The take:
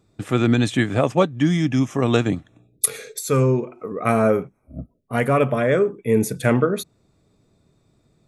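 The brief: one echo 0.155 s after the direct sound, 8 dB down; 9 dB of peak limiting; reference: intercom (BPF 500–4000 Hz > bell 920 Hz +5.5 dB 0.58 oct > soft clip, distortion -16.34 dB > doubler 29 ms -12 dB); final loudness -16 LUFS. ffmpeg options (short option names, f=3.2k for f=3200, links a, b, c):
-filter_complex "[0:a]alimiter=limit=-12dB:level=0:latency=1,highpass=500,lowpass=4k,equalizer=f=920:t=o:w=0.58:g=5.5,aecho=1:1:155:0.398,asoftclip=threshold=-18.5dB,asplit=2[a][b];[b]adelay=29,volume=-12dB[c];[a][c]amix=inputs=2:normalize=0,volume=13dB"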